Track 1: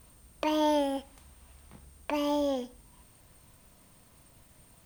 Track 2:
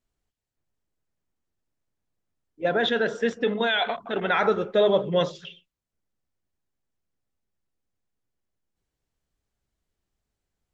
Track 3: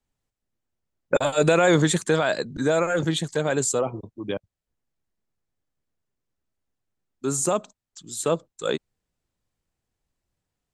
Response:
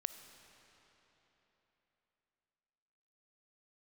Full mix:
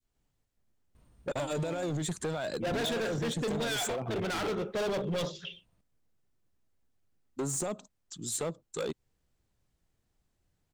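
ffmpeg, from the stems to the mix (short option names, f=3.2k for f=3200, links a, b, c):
-filter_complex "[0:a]aemphasis=mode=reproduction:type=50kf,adelay=950,volume=-8.5dB[a];[1:a]adynamicequalizer=threshold=0.02:dfrequency=610:dqfactor=1.1:tfrequency=610:tqfactor=1.1:attack=5:release=100:ratio=0.375:range=2:mode=cutabove:tftype=bell,volume=-0.5dB,asplit=2[b][c];[2:a]alimiter=limit=-14dB:level=0:latency=1:release=27,adelay=150,volume=-1.5dB[d];[c]apad=whole_len=256162[e];[a][e]sidechaincompress=threshold=-33dB:ratio=8:attack=22:release=1230[f];[f][d]amix=inputs=2:normalize=0,lowshelf=f=380:g=6,acompressor=threshold=-27dB:ratio=10,volume=0dB[g];[b][g]amix=inputs=2:normalize=0,volume=28.5dB,asoftclip=hard,volume=-28.5dB,adynamicequalizer=threshold=0.00708:dfrequency=1400:dqfactor=0.75:tfrequency=1400:tqfactor=0.75:attack=5:release=100:ratio=0.375:range=2.5:mode=cutabove:tftype=bell"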